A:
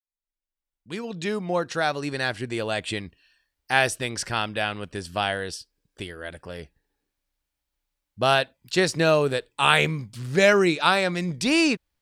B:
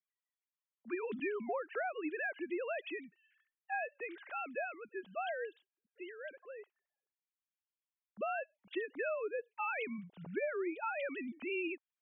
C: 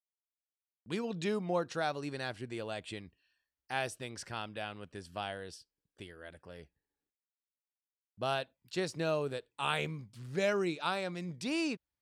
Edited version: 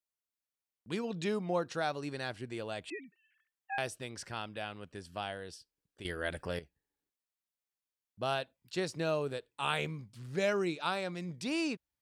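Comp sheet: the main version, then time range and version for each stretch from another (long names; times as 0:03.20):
C
0:02.90–0:03.78: punch in from B
0:06.05–0:06.59: punch in from A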